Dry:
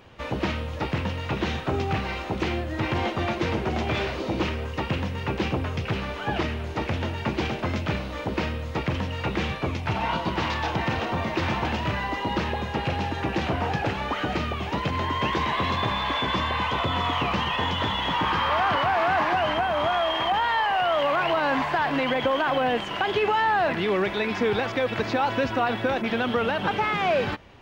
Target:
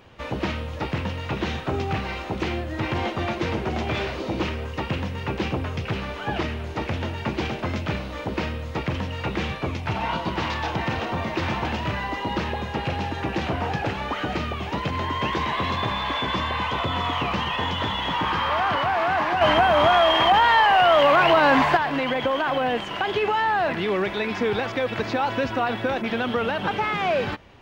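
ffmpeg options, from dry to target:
-filter_complex "[0:a]asettb=1/sr,asplit=3[a][b][c];[a]atrim=end=19.414[d];[b]atrim=start=19.41:end=21.77,asetpts=PTS-STARTPTS,afade=t=in:d=0.004:c=qsin,afade=t=out:st=2.356:d=0.004:c=qsin,acontrast=78[e];[c]atrim=start=21.766[f];[d][e]acrossfade=d=0.004:c1=hsin:c2=qsin[g];[g][f]acrossfade=d=0.004:c1=qsin:c2=hsin"

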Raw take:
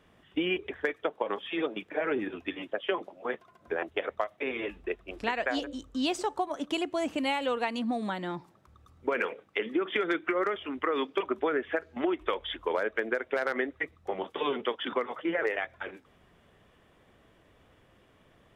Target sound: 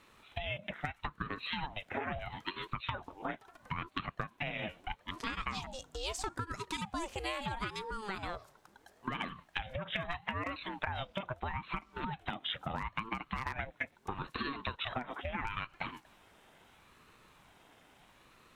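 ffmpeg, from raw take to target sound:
-af "acompressor=threshold=-36dB:ratio=6,bass=f=250:g=-13,treble=f=4k:g=6,aeval=exprs='val(0)*sin(2*PI*450*n/s+450*0.55/0.76*sin(2*PI*0.76*n/s))':c=same,volume=5dB"

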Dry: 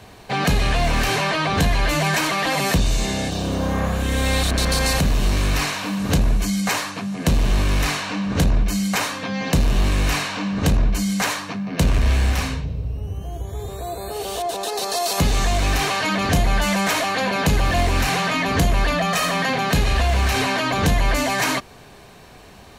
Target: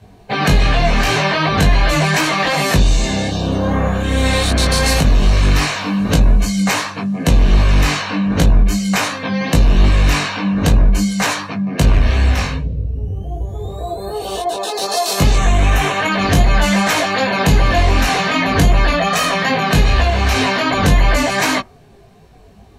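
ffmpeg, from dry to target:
-filter_complex "[0:a]asettb=1/sr,asplit=3[a][b][c];[a]atrim=end=15.364[d];[b]atrim=start=15.36:end=16.12,asetpts=PTS-STARTPTS,afade=t=in:d=0.004:c=qsin,afade=t=out:st=0.756:d=0.004:c=qsin,equalizer=f=4.7k:t=o:w=0.49:g=-10[e];[c]atrim=start=16.116[f];[d][e]acrossfade=d=0.004:c1=hsin:c2=qsin[g];[g][f]acrossfade=d=0.004:c1=qsin:c2=hsin,afftdn=nr=14:nf=-37,flanger=delay=18.5:depth=2.5:speed=2.6,volume=8dB"

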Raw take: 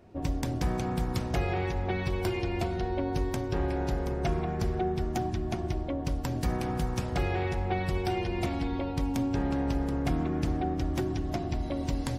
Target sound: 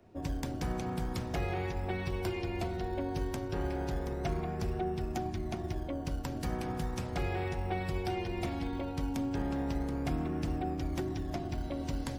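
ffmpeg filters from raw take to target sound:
-filter_complex "[0:a]bandreject=f=60:t=h:w=6,bandreject=f=120:t=h:w=6,acrossover=split=110|510|3500[a][b][c][d];[a]acrusher=samples=23:mix=1:aa=0.000001:lfo=1:lforange=13.8:lforate=0.36[e];[e][b][c][d]amix=inputs=4:normalize=0,volume=-4.5dB"

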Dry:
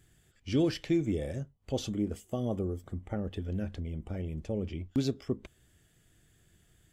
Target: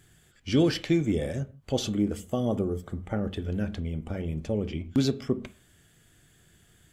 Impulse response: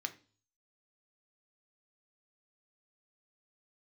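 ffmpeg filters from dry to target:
-filter_complex "[0:a]asplit=2[a][b];[1:a]atrim=start_sample=2205,afade=t=out:st=0.16:d=0.01,atrim=end_sample=7497,asetrate=27342,aresample=44100[c];[b][c]afir=irnorm=-1:irlink=0,volume=-3.5dB[d];[a][d]amix=inputs=2:normalize=0,volume=2dB"

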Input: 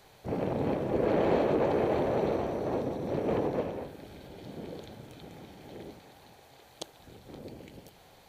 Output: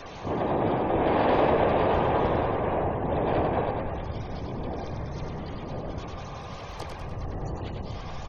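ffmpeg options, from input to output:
-filter_complex "[0:a]aeval=exprs='val(0)+0.5*0.0158*sgn(val(0))':c=same,asuperstop=centerf=910:order=20:qfactor=4.9,afftfilt=real='re*gte(hypot(re,im),0.0126)':imag='im*gte(hypot(re,im),0.0126)':win_size=1024:overlap=0.75,highshelf=f=2.2k:g=10,acrossover=split=2300[a][b];[b]acompressor=threshold=-56dB:ratio=10[c];[a][c]amix=inputs=2:normalize=0,asplit=4[d][e][f][g];[e]asetrate=29433,aresample=44100,atempo=1.49831,volume=-4dB[h];[f]asetrate=58866,aresample=44100,atempo=0.749154,volume=-3dB[i];[g]asetrate=66075,aresample=44100,atempo=0.66742,volume=0dB[j];[d][h][i][j]amix=inputs=4:normalize=0,asubboost=boost=6:cutoff=97,bandreject=f=60:t=h:w=6,bandreject=f=120:t=h:w=6,bandreject=f=180:t=h:w=6,asplit=7[k][l][m][n][o][p][q];[l]adelay=98,afreqshift=31,volume=-4.5dB[r];[m]adelay=196,afreqshift=62,volume=-11.2dB[s];[n]adelay=294,afreqshift=93,volume=-18dB[t];[o]adelay=392,afreqshift=124,volume=-24.7dB[u];[p]adelay=490,afreqshift=155,volume=-31.5dB[v];[q]adelay=588,afreqshift=186,volume=-38.2dB[w];[k][r][s][t][u][v][w]amix=inputs=7:normalize=0,volume=-2.5dB"

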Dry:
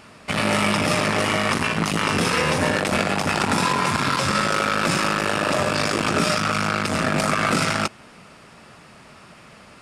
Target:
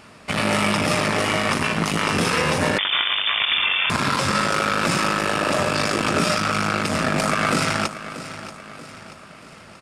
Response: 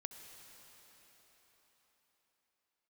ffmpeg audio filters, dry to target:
-filter_complex "[0:a]aecho=1:1:633|1266|1899|2532|3165:0.211|0.0993|0.0467|0.0219|0.0103,asettb=1/sr,asplit=3[a][b][c];[a]atrim=end=2.784[d];[b]atrim=start=2.78:end=3.9,asetpts=PTS-STARTPTS,afade=t=in:d=0.004:c=qsin,afade=t=out:st=1.116:d=0.004:c=qsin,lowpass=f=3.1k:t=q:w=0.5098,lowpass=f=3.1k:t=q:w=0.6013,lowpass=f=3.1k:t=q:w=0.9,lowpass=f=3.1k:t=q:w=2.563,afreqshift=-3700[e];[c]atrim=start=3.896[f];[d][e]acrossfade=d=0.004:c1=hsin:c2=qsin[g];[g][f]acrossfade=d=0.004:c1=qsin:c2=hsin"

